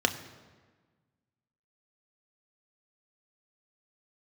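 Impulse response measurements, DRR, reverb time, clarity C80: 6.0 dB, 1.4 s, 13.5 dB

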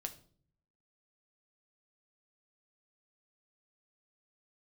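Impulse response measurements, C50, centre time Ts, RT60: 14.5 dB, 7 ms, 0.50 s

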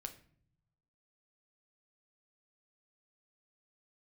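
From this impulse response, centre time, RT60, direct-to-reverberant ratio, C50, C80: 8 ms, 0.55 s, 5.5 dB, 13.0 dB, 17.0 dB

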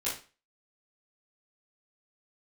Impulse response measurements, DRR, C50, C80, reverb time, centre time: -10.5 dB, 5.5 dB, 12.5 dB, 0.35 s, 33 ms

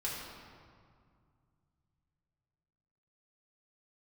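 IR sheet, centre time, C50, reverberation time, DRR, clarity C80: 100 ms, 0.0 dB, 2.1 s, -6.5 dB, 1.5 dB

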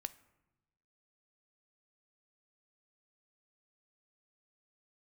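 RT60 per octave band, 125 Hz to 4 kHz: 1.4 s, 1.2 s, 1.0 s, 1.0 s, 0.85 s, 0.55 s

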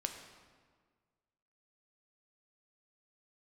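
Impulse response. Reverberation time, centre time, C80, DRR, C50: 1.6 s, 31 ms, 8.0 dB, 4.0 dB, 6.5 dB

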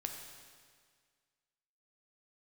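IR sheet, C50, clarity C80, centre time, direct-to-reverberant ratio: 4.5 dB, 6.0 dB, 50 ms, 2.5 dB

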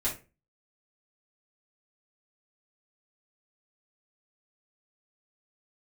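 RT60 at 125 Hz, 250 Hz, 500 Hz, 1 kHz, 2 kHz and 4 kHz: 0.40 s, 0.35 s, 0.35 s, 0.25 s, 0.30 s, 0.20 s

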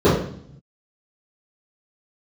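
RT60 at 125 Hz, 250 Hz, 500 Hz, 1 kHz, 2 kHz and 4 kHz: 1.3 s, 0.90 s, 0.60 s, 0.60 s, 0.55 s, 0.65 s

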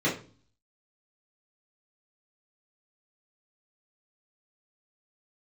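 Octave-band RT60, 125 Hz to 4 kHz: 0.70 s, 0.55 s, 0.40 s, 0.35 s, 0.35 s, 0.35 s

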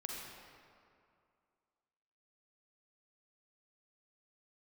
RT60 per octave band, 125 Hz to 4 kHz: 2.3 s, 2.4 s, 2.4 s, 2.4 s, 1.9 s, 1.4 s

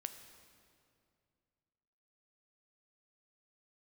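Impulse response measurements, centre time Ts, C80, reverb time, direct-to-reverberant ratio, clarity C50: 24 ms, 10.0 dB, 2.4 s, 8.0 dB, 9.5 dB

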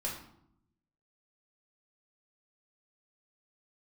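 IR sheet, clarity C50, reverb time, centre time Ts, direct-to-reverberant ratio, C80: 5.5 dB, 0.75 s, 33 ms, -3.5 dB, 9.0 dB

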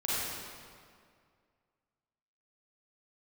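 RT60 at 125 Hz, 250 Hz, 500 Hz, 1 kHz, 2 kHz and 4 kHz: 2.3 s, 2.2 s, 2.2 s, 2.1 s, 1.8 s, 1.5 s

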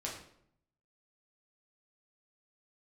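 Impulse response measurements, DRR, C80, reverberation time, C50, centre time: -4.0 dB, 8.5 dB, 0.70 s, 5.0 dB, 35 ms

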